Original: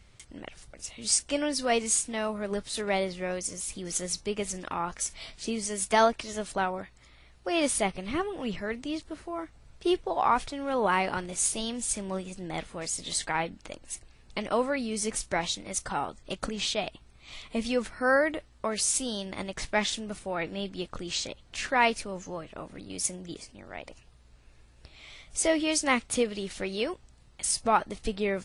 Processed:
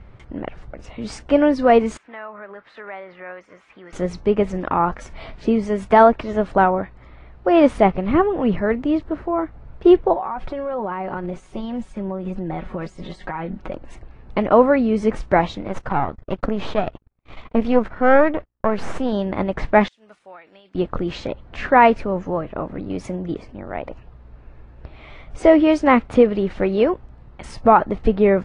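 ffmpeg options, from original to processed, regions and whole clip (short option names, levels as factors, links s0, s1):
-filter_complex "[0:a]asettb=1/sr,asplit=3[s0][s1][s2];[s0]atrim=end=1.974[s3];[s1]atrim=start=1.97:end=3.93,asetpts=PTS-STARTPTS,afade=t=in:d=0.004:c=qsin,afade=t=out:st=1.956:d=0.004:c=qsin,acompressor=threshold=0.0224:ratio=5:attack=3.2:release=140:knee=1:detection=peak,bandpass=f=1700:t=q:w=1.5[s4];[s2]atrim=start=3.926[s5];[s3][s4]acrossfade=d=0.004:c1=hsin:c2=qsin[s6];[s6][s5]acrossfade=d=0.004:c1=qsin:c2=hsin,asettb=1/sr,asplit=3[s7][s8][s9];[s7]atrim=end=10.134[s10];[s8]atrim=start=10.13:end=13.73,asetpts=PTS-STARTPTS,afade=t=in:d=0.004:c=qsin,afade=t=out:st=3.596:d=0.004:c=qsin,aecho=1:1:5.4:0.59,atrim=end_sample=158760,acompressor=threshold=0.0158:ratio=10:attack=3.2:release=140:knee=1:detection=peak[s11];[s9]atrim=start=13.726[s12];[s10][s11]acrossfade=d=0.004:c1=hsin:c2=qsin[s13];[s13][s12]acrossfade=d=0.004:c1=qsin:c2=hsin,asettb=1/sr,asplit=3[s14][s15][s16];[s14]atrim=end=15.684[s17];[s15]atrim=start=15.68:end=19.13,asetpts=PTS-STARTPTS,afade=t=in:d=0.004:c=qsin,afade=t=out:st=3.446:d=0.004:c=qsin,aeval=exprs='if(lt(val(0),0),0.251*val(0),val(0))':c=same,agate=range=0.0251:threshold=0.00224:ratio=16:release=100:detection=peak[s18];[s16]atrim=start=19.126[s19];[s17][s18]acrossfade=d=0.004:c1=hsin:c2=qsin[s20];[s20][s19]acrossfade=d=0.004:c1=qsin:c2=hsin,asettb=1/sr,asplit=3[s21][s22][s23];[s21]atrim=end=19.884[s24];[s22]atrim=start=19.88:end=20.75,asetpts=PTS-STARTPTS,afade=t=in:d=0.004:c=qsin,afade=t=out:st=0.866:d=0.004:c=qsin,aderivative,acompressor=threshold=0.00398:ratio=20:attack=3.2:release=140:knee=1:detection=peak[s25];[s23]atrim=start=20.746[s26];[s24][s25]acrossfade=d=0.004:c1=hsin:c2=qsin[s27];[s27][s26]acrossfade=d=0.004:c1=qsin:c2=hsin,lowpass=1300,alimiter=level_in=5.96:limit=0.891:release=50:level=0:latency=1,volume=0.891"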